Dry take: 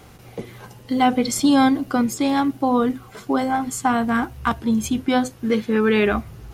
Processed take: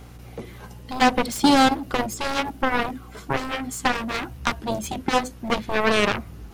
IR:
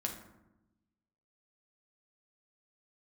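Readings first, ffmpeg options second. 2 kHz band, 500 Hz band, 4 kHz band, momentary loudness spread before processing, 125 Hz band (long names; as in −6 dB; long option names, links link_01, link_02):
+2.0 dB, −3.0 dB, +3.5 dB, 10 LU, −1.5 dB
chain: -af "aeval=exprs='0.562*(cos(1*acos(clip(val(0)/0.562,-1,1)))-cos(1*PI/2))+0.158*(cos(7*acos(clip(val(0)/0.562,-1,1)))-cos(7*PI/2))':channel_layout=same,aeval=exprs='val(0)+0.00891*(sin(2*PI*60*n/s)+sin(2*PI*2*60*n/s)/2+sin(2*PI*3*60*n/s)/3+sin(2*PI*4*60*n/s)/4+sin(2*PI*5*60*n/s)/5)':channel_layout=same,volume=-1.5dB"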